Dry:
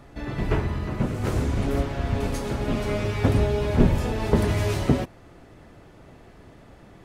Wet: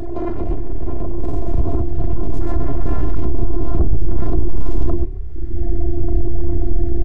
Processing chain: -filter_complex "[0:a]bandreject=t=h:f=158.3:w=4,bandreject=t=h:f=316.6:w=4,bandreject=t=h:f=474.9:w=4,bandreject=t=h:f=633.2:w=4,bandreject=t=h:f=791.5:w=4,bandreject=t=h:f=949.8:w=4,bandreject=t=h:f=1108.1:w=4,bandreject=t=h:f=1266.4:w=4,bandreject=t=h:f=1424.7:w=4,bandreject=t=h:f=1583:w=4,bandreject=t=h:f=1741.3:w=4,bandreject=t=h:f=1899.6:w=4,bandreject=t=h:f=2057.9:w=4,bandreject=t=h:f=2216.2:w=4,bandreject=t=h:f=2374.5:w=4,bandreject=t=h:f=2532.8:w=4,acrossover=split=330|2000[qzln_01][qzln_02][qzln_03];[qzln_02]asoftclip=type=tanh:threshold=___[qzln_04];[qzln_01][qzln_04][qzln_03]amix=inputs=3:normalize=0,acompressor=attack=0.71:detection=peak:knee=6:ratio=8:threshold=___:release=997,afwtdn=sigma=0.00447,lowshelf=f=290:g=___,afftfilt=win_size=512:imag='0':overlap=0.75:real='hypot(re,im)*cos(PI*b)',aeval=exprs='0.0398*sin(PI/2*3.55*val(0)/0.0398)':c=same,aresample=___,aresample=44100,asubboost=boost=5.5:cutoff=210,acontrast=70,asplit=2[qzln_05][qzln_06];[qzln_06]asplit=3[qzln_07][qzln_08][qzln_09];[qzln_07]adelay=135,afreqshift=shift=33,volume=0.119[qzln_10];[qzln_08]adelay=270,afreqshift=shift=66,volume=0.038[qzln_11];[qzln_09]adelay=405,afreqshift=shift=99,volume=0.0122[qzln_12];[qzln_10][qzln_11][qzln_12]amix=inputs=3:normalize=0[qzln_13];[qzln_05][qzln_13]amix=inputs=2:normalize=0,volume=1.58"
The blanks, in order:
0.0316, 0.0158, 8.5, 22050